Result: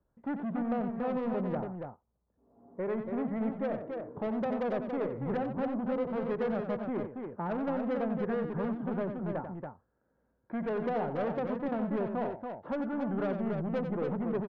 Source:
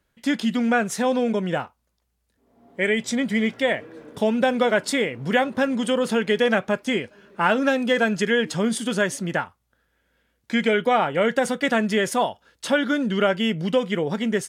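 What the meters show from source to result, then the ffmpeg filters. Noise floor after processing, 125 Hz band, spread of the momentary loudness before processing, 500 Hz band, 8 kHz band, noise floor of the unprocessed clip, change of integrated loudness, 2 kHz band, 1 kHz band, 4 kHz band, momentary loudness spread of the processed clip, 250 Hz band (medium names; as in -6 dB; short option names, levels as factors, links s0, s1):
-77 dBFS, -6.5 dB, 7 LU, -10.5 dB, under -40 dB, -73 dBFS, -11.5 dB, -21.5 dB, -11.5 dB, under -25 dB, 6 LU, -9.0 dB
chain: -filter_complex "[0:a]lowpass=f=1100:w=0.5412,lowpass=f=1100:w=1.3066,acrossover=split=620[s0][s1];[s0]asoftclip=type=tanh:threshold=0.0398[s2];[s1]acompressor=threshold=0.0126:ratio=6[s3];[s2][s3]amix=inputs=2:normalize=0,aecho=1:1:91|282:0.376|0.531,volume=0.631"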